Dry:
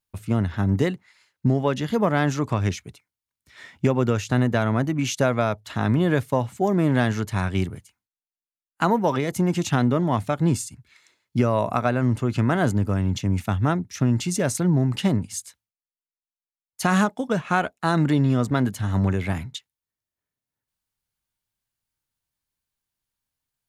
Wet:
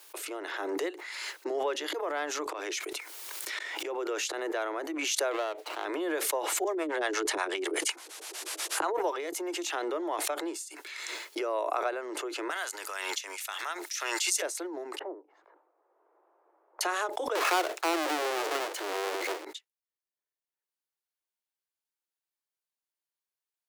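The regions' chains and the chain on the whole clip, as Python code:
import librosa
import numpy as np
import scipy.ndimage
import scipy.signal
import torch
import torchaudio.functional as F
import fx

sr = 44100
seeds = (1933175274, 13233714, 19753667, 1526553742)

y = fx.chain(x, sr, fx.auto_swell(attack_ms=452.0),
    fx.env_flatten(amount_pct=70), at=(1.54, 4.72))
y = fx.chain(y, sr, fx.median_filter(points=25),
    fx.peak_eq(hz=2500.0, db=4.0, octaves=1.9), at=(5.31, 5.85))
y = fx.chain(y, sr, fx.lowpass(hz=11000.0, slope=24),
    fx.harmonic_tremolo(hz=8.3, depth_pct=100, crossover_hz=430.0),
    fx.env_flatten(amount_pct=100), at=(6.64, 8.97))
y = fx.chain(y, sr, fx.highpass(hz=1100.0, slope=12),
    fx.high_shelf(hz=2700.0, db=10.5), at=(12.5, 14.42))
y = fx.chain(y, sr, fx.lowpass(hz=1000.0, slope=24),
    fx.band_squash(depth_pct=40), at=(14.99, 16.81))
y = fx.chain(y, sr, fx.halfwave_hold(),
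    fx.high_shelf(hz=7200.0, db=-6.5), at=(17.35, 19.45))
y = scipy.signal.sosfilt(scipy.signal.butter(16, 320.0, 'highpass', fs=sr, output='sos'), y)
y = fx.pre_swell(y, sr, db_per_s=23.0)
y = y * librosa.db_to_amplitude(-8.5)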